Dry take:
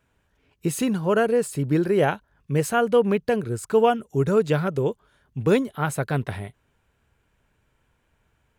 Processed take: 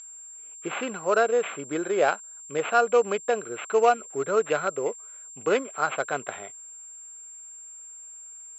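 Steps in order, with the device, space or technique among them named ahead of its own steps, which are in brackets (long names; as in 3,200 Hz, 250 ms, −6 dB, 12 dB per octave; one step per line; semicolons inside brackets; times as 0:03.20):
toy sound module (linearly interpolated sample-rate reduction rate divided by 8×; switching amplifier with a slow clock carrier 7,400 Hz; loudspeaker in its box 800–4,500 Hz, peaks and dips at 920 Hz −9 dB, 1,800 Hz −8 dB, 3,100 Hz −3 dB)
level +8 dB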